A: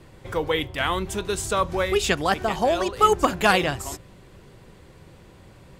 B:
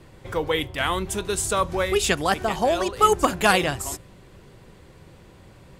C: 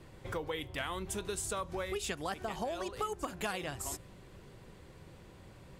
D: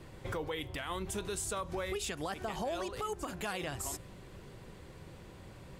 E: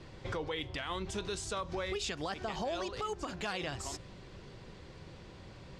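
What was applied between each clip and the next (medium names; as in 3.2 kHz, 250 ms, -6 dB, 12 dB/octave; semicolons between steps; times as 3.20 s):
dynamic bell 10 kHz, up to +7 dB, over -46 dBFS, Q 1.1
compression 6:1, threshold -29 dBFS, peak gain reduction 16 dB; trim -5.5 dB
peak limiter -31 dBFS, peak gain reduction 8.5 dB; trim +3 dB
resonant low-pass 5.2 kHz, resonance Q 1.6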